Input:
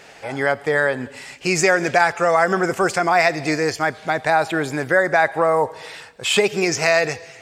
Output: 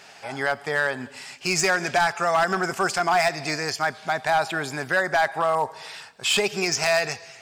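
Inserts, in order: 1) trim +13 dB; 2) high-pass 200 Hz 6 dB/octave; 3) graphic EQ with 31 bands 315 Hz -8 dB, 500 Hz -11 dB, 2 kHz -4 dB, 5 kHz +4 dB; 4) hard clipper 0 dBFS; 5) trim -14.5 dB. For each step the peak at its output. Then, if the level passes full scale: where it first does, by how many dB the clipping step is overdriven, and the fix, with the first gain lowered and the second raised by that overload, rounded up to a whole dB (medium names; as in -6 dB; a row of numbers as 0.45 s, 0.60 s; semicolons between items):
+10.5 dBFS, +10.0 dBFS, +9.0 dBFS, 0.0 dBFS, -14.5 dBFS; step 1, 9.0 dB; step 1 +4 dB, step 5 -5.5 dB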